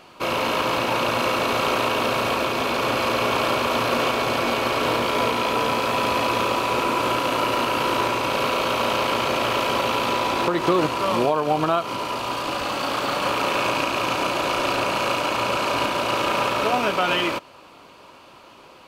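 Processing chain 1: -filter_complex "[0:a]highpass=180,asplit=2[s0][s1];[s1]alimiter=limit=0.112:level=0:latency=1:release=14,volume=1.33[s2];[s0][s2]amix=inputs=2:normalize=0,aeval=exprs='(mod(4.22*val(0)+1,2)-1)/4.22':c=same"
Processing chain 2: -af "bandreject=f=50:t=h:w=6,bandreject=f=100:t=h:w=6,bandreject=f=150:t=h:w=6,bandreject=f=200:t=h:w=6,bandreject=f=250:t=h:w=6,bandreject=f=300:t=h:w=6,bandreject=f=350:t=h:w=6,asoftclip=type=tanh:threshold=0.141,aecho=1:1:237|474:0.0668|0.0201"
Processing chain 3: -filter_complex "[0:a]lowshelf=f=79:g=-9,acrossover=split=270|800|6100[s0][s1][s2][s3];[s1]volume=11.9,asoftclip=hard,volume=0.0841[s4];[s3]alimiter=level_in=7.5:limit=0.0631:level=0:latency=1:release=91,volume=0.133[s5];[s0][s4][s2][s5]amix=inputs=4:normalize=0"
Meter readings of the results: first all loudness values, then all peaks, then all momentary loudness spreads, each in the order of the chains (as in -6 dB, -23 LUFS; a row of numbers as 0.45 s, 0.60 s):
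-17.0 LUFS, -24.0 LUFS, -22.5 LUFS; -12.5 dBFS, -16.5 dBFS, -8.5 dBFS; 1 LU, 2 LU, 2 LU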